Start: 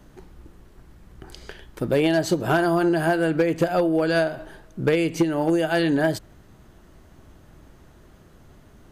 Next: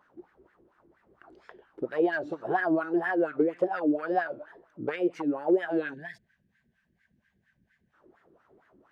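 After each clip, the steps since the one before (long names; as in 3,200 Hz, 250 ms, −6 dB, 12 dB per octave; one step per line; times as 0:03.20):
LFO wah 4.3 Hz 330–1,700 Hz, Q 3.7
tape wow and flutter 150 cents
gain on a spectral selection 0:05.94–0:07.93, 250–1,500 Hz −21 dB
level +1.5 dB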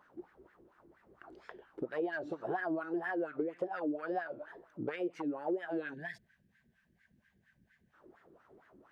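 downward compressor 2.5 to 1, threshold −37 dBFS, peak gain reduction 12.5 dB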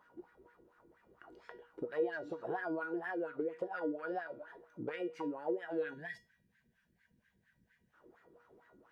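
tuned comb filter 480 Hz, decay 0.27 s, harmonics all, mix 80%
level +9.5 dB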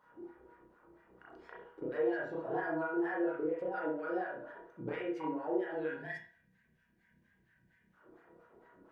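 convolution reverb, pre-delay 32 ms, DRR −4.5 dB
level −3.5 dB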